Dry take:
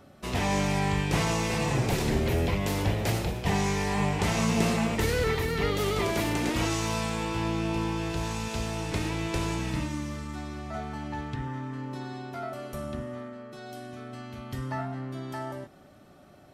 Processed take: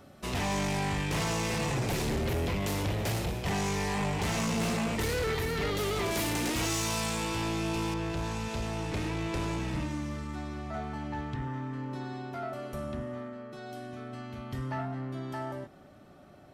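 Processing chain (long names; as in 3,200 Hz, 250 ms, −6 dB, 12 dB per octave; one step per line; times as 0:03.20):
high-shelf EQ 4,000 Hz +2.5 dB, from 0:06.11 +9 dB, from 0:07.94 −5.5 dB
soft clipping −26 dBFS, distortion −11 dB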